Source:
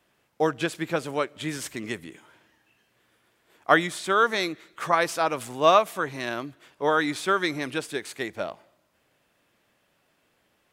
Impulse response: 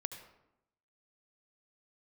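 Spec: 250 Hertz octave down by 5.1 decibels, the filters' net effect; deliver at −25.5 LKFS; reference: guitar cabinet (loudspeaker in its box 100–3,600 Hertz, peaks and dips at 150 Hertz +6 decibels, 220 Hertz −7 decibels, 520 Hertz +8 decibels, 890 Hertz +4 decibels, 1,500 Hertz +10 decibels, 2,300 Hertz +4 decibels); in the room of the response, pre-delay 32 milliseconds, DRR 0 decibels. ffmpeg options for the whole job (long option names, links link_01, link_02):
-filter_complex "[0:a]equalizer=frequency=250:width_type=o:gain=-8,asplit=2[link_01][link_02];[1:a]atrim=start_sample=2205,adelay=32[link_03];[link_02][link_03]afir=irnorm=-1:irlink=0,volume=1dB[link_04];[link_01][link_04]amix=inputs=2:normalize=0,highpass=100,equalizer=frequency=150:width_type=q:width=4:gain=6,equalizer=frequency=220:width_type=q:width=4:gain=-7,equalizer=frequency=520:width_type=q:width=4:gain=8,equalizer=frequency=890:width_type=q:width=4:gain=4,equalizer=frequency=1500:width_type=q:width=4:gain=10,equalizer=frequency=2300:width_type=q:width=4:gain=4,lowpass=frequency=3600:width=0.5412,lowpass=frequency=3600:width=1.3066,volume=-7dB"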